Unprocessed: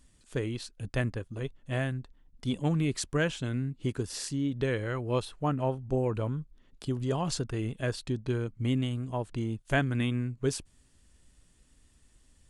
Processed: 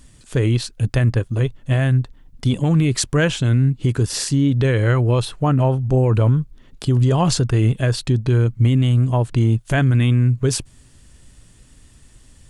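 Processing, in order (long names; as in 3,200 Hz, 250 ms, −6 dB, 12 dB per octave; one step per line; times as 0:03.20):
parametric band 120 Hz +7.5 dB 0.5 octaves
boost into a limiter +21 dB
level −7.5 dB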